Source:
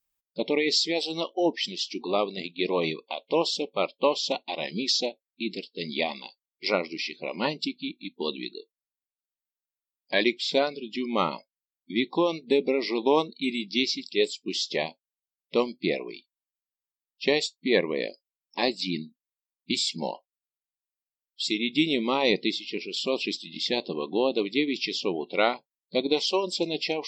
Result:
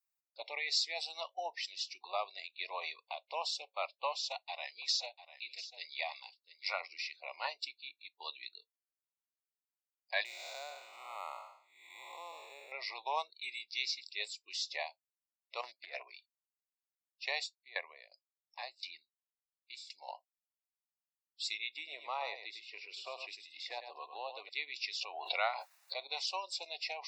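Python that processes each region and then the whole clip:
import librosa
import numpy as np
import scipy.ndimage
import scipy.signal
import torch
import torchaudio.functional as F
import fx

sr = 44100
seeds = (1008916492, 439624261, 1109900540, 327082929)

y = fx.chain(x, sr, fx.highpass(hz=580.0, slope=6),
    fx.echo_single(ms=697, db=-14.0), at=(4.12, 6.81))
y = fx.chain(y, sr, fx.spec_blur(span_ms=343.0),
    fx.resample_linear(factor=4), at=(10.25, 12.72))
y = fx.chain(y, sr, fx.over_compress(threshold_db=-29.0, ratio=-0.5),
    fx.doppler_dist(depth_ms=0.15), at=(15.61, 16.03))
y = fx.chain(y, sr, fx.lowpass(hz=7600.0, slope=12),
    fx.tremolo_decay(direction='decaying', hz=2.8, depth_db=19), at=(17.4, 20.08))
y = fx.chain(y, sr, fx.high_shelf(hz=2100.0, db=-11.5),
    fx.echo_single(ms=101, db=-9.5),
    fx.band_squash(depth_pct=70), at=(21.74, 24.49))
y = fx.chain(y, sr, fx.highpass(hz=360.0, slope=6),
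    fx.high_shelf(hz=4800.0, db=-8.5),
    fx.pre_swell(db_per_s=20.0), at=(25.01, 26.06))
y = scipy.signal.sosfilt(scipy.signal.cheby1(4, 1.0, 680.0, 'highpass', fs=sr, output='sos'), y)
y = fx.notch(y, sr, hz=3200.0, q=5.2)
y = y * librosa.db_to_amplitude(-7.0)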